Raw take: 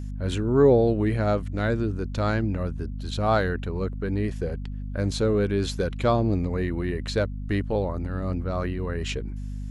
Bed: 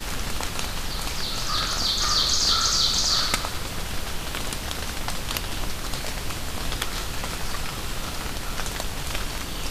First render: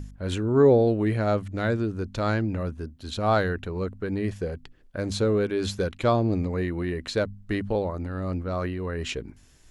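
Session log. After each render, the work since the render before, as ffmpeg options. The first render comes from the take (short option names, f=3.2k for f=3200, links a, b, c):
-af "bandreject=f=50:t=h:w=4,bandreject=f=100:t=h:w=4,bandreject=f=150:t=h:w=4,bandreject=f=200:t=h:w=4,bandreject=f=250:t=h:w=4"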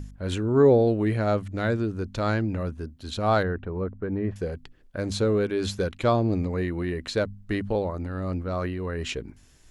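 -filter_complex "[0:a]asettb=1/sr,asplit=3[a][b][c];[a]atrim=end=3.434[d];[b]atrim=start=3.43:end=4.36,asetpts=PTS-STARTPTS,afade=t=in:d=0.004:c=qsin,afade=t=out:st=0.926:d=0.004:c=qsin,lowpass=1.5k[e];[c]atrim=start=4.356[f];[d][e]acrossfade=d=0.004:c1=hsin:c2=qsin[g];[g][f]acrossfade=d=0.004:c1=qsin:c2=hsin"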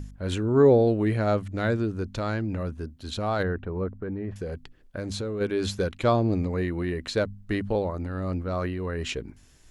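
-filter_complex "[0:a]asplit=3[a][b][c];[a]afade=t=out:st=2.1:d=0.02[d];[b]acompressor=threshold=-26dB:ratio=2:attack=3.2:release=140:knee=1:detection=peak,afade=t=in:st=2.1:d=0.02,afade=t=out:st=3.39:d=0.02[e];[c]afade=t=in:st=3.39:d=0.02[f];[d][e][f]amix=inputs=3:normalize=0,asplit=3[g][h][i];[g]afade=t=out:st=3.98:d=0.02[j];[h]acompressor=threshold=-28dB:ratio=6:attack=3.2:release=140:knee=1:detection=peak,afade=t=in:st=3.98:d=0.02,afade=t=out:st=5.4:d=0.02[k];[i]afade=t=in:st=5.4:d=0.02[l];[j][k][l]amix=inputs=3:normalize=0"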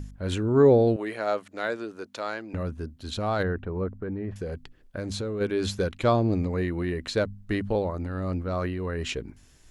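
-filter_complex "[0:a]asettb=1/sr,asplit=3[a][b][c];[a]atrim=end=0.964[d];[b]atrim=start=0.96:end=2.54,asetpts=PTS-STARTPTS,afade=t=in:d=0.004:c=qsin,afade=t=out:st=1.576:d=0.004:c=qsin,highpass=470[e];[c]atrim=start=2.536[f];[d][e]acrossfade=d=0.004:c1=hsin:c2=qsin[g];[g][f]acrossfade=d=0.004:c1=qsin:c2=hsin"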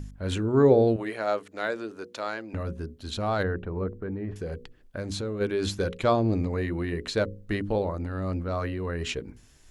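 -af "bandreject=f=60:t=h:w=6,bandreject=f=120:t=h:w=6,bandreject=f=180:t=h:w=6,bandreject=f=240:t=h:w=6,bandreject=f=300:t=h:w=6,bandreject=f=360:t=h:w=6,bandreject=f=420:t=h:w=6,bandreject=f=480:t=h:w=6,bandreject=f=540:t=h:w=6"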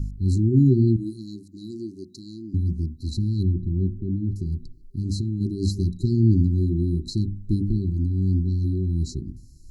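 -af "afftfilt=real='re*(1-between(b*sr/4096,390,3900))':imag='im*(1-between(b*sr/4096,390,3900))':win_size=4096:overlap=0.75,bass=f=250:g=11,treble=f=4k:g=-1"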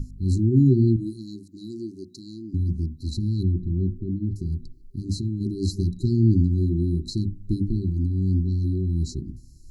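-af "bandreject=f=50:t=h:w=6,bandreject=f=100:t=h:w=6,bandreject=f=150:t=h:w=6,bandreject=f=200:t=h:w=6"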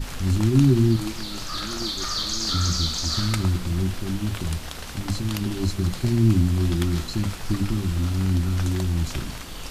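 -filter_complex "[1:a]volume=-5.5dB[a];[0:a][a]amix=inputs=2:normalize=0"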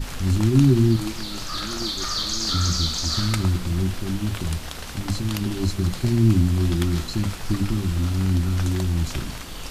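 -af "volume=1dB"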